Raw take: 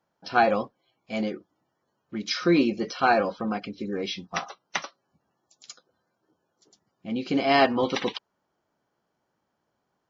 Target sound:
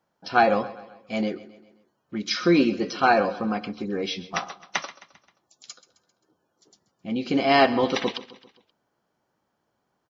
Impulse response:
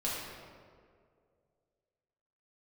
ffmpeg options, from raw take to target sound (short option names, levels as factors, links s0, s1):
-filter_complex "[0:a]aecho=1:1:132|264|396|528:0.141|0.0706|0.0353|0.0177,asplit=2[s0][s1];[1:a]atrim=start_sample=2205,afade=t=out:st=0.22:d=0.01,atrim=end_sample=10143[s2];[s1][s2]afir=irnorm=-1:irlink=0,volume=0.0531[s3];[s0][s3]amix=inputs=2:normalize=0,volume=1.19"